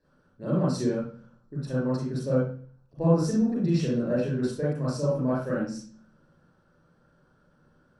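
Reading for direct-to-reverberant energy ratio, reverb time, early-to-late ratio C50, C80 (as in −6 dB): −7.0 dB, 0.45 s, −0.5 dB, 5.5 dB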